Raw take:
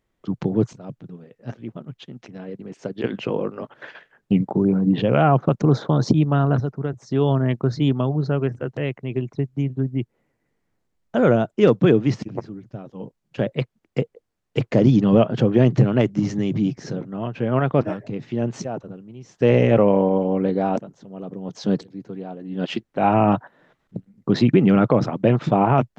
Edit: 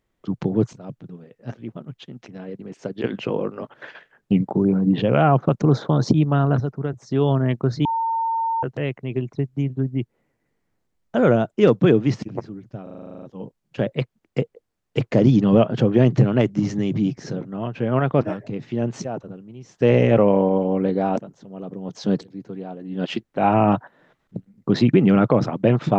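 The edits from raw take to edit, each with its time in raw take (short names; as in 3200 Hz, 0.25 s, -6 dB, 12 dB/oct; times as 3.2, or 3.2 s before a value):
7.85–8.63 bleep 908 Hz -19.5 dBFS
12.83 stutter 0.04 s, 11 plays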